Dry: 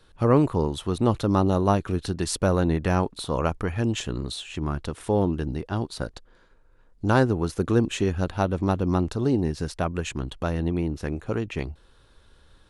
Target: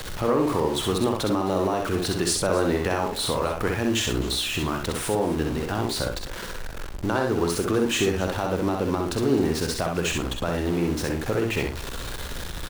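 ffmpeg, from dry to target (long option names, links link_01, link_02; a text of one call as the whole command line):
ffmpeg -i in.wav -filter_complex "[0:a]aeval=exprs='val(0)+0.5*0.0251*sgn(val(0))':channel_layout=same,acrossover=split=290[link_01][link_02];[link_01]acompressor=threshold=-32dB:ratio=6[link_03];[link_03][link_02]amix=inputs=2:normalize=0,asplit=2[link_04][link_05];[link_05]adelay=47,volume=-10.5dB[link_06];[link_04][link_06]amix=inputs=2:normalize=0,alimiter=limit=-16.5dB:level=0:latency=1:release=113,aecho=1:1:64|263:0.631|0.126,volume=3dB" out.wav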